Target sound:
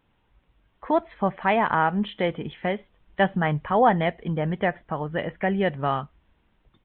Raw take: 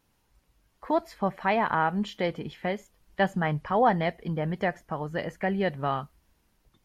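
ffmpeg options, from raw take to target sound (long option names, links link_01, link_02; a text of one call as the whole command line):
ffmpeg -i in.wav -af "aresample=8000,aresample=44100,volume=3.5dB" out.wav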